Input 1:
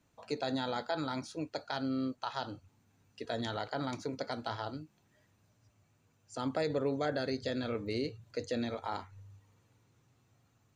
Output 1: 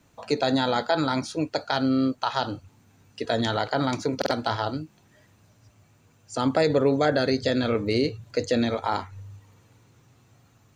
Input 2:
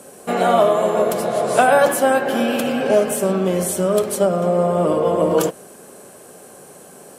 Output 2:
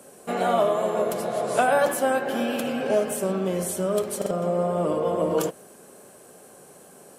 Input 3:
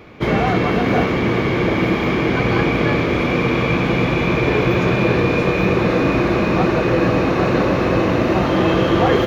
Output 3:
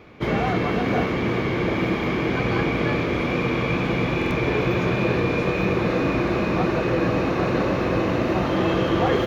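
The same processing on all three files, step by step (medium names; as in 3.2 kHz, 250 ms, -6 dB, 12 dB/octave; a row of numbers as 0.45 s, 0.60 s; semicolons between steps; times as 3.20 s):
wow and flutter 16 cents; buffer glitch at 4.17 s, samples 2048, times 2; peak normalisation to -9 dBFS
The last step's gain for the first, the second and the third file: +11.5 dB, -7.0 dB, -5.5 dB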